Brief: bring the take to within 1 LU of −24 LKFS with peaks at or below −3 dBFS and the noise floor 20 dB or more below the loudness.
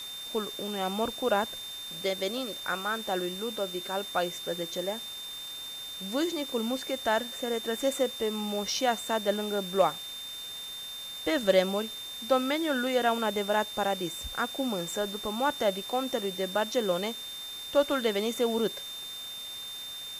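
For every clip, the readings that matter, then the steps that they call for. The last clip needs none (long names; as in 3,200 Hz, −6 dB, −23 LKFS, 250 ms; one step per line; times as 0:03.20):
interfering tone 3,600 Hz; level of the tone −38 dBFS; background noise floor −40 dBFS; target noise floor −51 dBFS; integrated loudness −30.5 LKFS; sample peak −12.0 dBFS; target loudness −24.0 LKFS
→ notch filter 3,600 Hz, Q 30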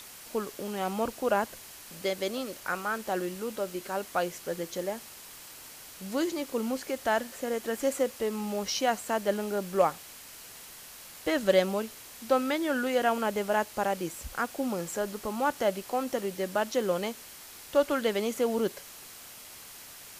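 interfering tone none found; background noise floor −48 dBFS; target noise floor −51 dBFS
→ broadband denoise 6 dB, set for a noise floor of −48 dBFS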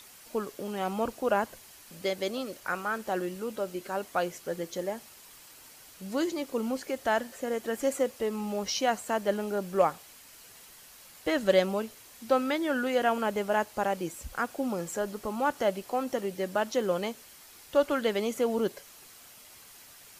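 background noise floor −53 dBFS; integrated loudness −30.5 LKFS; sample peak −12.0 dBFS; target loudness −24.0 LKFS
→ level +6.5 dB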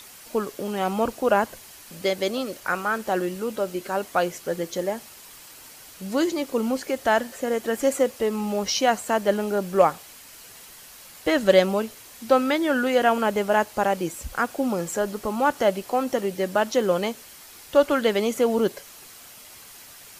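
integrated loudness −24.0 LKFS; sample peak −5.5 dBFS; background noise floor −46 dBFS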